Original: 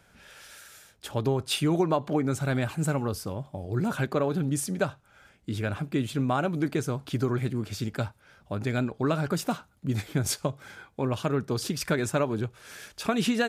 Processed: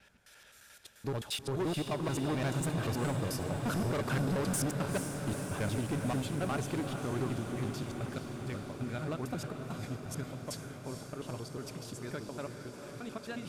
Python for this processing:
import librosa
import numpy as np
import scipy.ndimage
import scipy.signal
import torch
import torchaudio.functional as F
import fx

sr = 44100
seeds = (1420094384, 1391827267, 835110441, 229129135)

y = fx.block_reorder(x, sr, ms=88.0, group=3)
y = fx.doppler_pass(y, sr, speed_mps=5, closest_m=7.4, pass_at_s=4.07)
y = np.clip(y, -10.0 ** (-30.0 / 20.0), 10.0 ** (-30.0 / 20.0))
y = fx.echo_diffused(y, sr, ms=452, feedback_pct=76, wet_db=-7)